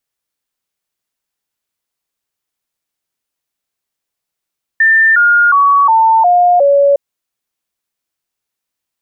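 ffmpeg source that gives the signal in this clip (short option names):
-f lavfi -i "aevalsrc='0.531*clip(min(mod(t,0.36),0.36-mod(t,0.36))/0.005,0,1)*sin(2*PI*1790*pow(2,-floor(t/0.36)/3)*mod(t,0.36))':d=2.16:s=44100"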